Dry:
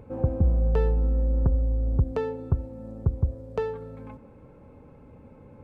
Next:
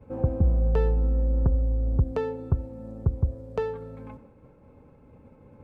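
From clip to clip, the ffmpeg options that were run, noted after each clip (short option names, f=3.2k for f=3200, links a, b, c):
-af "agate=range=-33dB:threshold=-45dB:ratio=3:detection=peak"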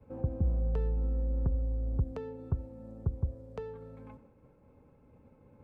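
-filter_complex "[0:a]acrossover=split=360[a][b];[b]acompressor=threshold=-36dB:ratio=6[c];[a][c]amix=inputs=2:normalize=0,volume=-7.5dB"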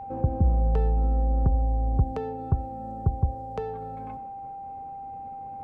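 -af "aeval=exprs='val(0)+0.00708*sin(2*PI*790*n/s)':c=same,volume=7.5dB"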